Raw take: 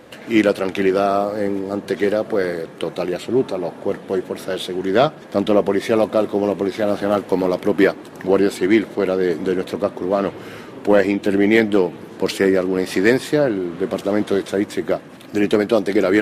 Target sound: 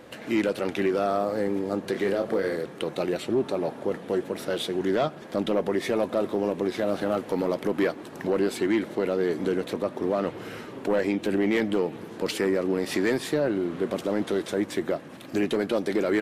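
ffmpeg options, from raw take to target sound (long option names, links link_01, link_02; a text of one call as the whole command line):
ffmpeg -i in.wav -filter_complex "[0:a]asoftclip=type=tanh:threshold=-7dB,asplit=3[link_01][link_02][link_03];[link_01]afade=type=out:start_time=1.94:duration=0.02[link_04];[link_02]asplit=2[link_05][link_06];[link_06]adelay=31,volume=-5dB[link_07];[link_05][link_07]amix=inputs=2:normalize=0,afade=type=in:start_time=1.94:duration=0.02,afade=type=out:start_time=2.55:duration=0.02[link_08];[link_03]afade=type=in:start_time=2.55:duration=0.02[link_09];[link_04][link_08][link_09]amix=inputs=3:normalize=0,alimiter=limit=-13dB:level=0:latency=1:release=132,volume=-3.5dB" out.wav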